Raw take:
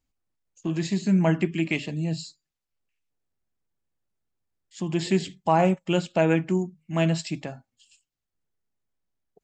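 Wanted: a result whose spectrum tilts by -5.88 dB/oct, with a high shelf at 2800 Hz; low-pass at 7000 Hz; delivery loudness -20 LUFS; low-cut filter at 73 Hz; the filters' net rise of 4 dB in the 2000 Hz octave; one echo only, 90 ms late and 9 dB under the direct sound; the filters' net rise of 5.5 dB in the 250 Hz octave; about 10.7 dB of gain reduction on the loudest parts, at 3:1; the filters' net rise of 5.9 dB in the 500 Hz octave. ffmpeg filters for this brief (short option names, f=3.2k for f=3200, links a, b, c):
-af "highpass=73,lowpass=7k,equalizer=f=250:t=o:g=7.5,equalizer=f=500:t=o:g=5.5,equalizer=f=2k:t=o:g=7.5,highshelf=f=2.8k:g=-6,acompressor=threshold=-26dB:ratio=3,aecho=1:1:90:0.355,volume=9dB"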